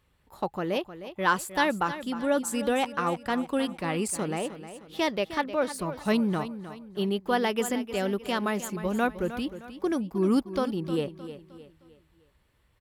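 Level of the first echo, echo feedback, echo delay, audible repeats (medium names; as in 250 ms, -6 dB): -12.5 dB, 40%, 309 ms, 3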